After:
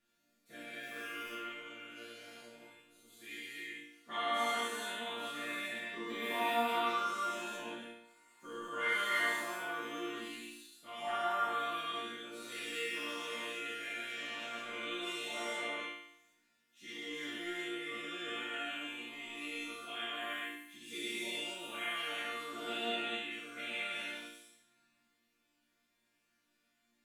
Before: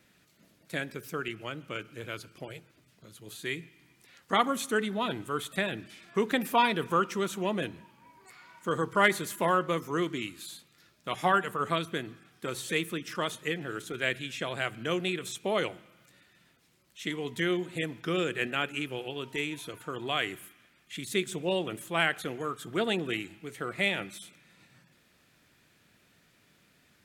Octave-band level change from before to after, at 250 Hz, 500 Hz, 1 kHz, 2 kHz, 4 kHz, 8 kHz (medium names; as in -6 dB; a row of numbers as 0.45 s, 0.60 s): -12.0 dB, -10.5 dB, -6.0 dB, -5.0 dB, -4.0 dB, -7.0 dB